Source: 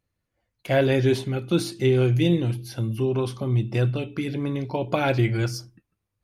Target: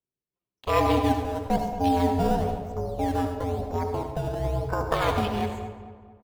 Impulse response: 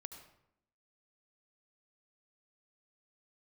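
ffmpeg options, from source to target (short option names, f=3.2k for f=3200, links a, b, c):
-filter_complex "[0:a]afwtdn=0.0224,acrossover=split=230|3000[a][b][c];[a]acompressor=threshold=-29dB:ratio=8[d];[d][b][c]amix=inputs=3:normalize=0,asetrate=60591,aresample=44100,atempo=0.727827,aeval=exprs='val(0)*sin(2*PI*260*n/s)':c=same,asplit=2[e][f];[f]acrusher=samples=14:mix=1:aa=0.000001:lfo=1:lforange=14:lforate=1,volume=-9dB[g];[e][g]amix=inputs=2:normalize=0,asplit=2[h][i];[i]adelay=225,lowpass=f=2.2k:p=1,volume=-11.5dB,asplit=2[j][k];[k]adelay=225,lowpass=f=2.2k:p=1,volume=0.46,asplit=2[l][m];[m]adelay=225,lowpass=f=2.2k:p=1,volume=0.46,asplit=2[n][o];[o]adelay=225,lowpass=f=2.2k:p=1,volume=0.46,asplit=2[p][q];[q]adelay=225,lowpass=f=2.2k:p=1,volume=0.46[r];[h][j][l][n][p][r]amix=inputs=6:normalize=0[s];[1:a]atrim=start_sample=2205[t];[s][t]afir=irnorm=-1:irlink=0,volume=4.5dB"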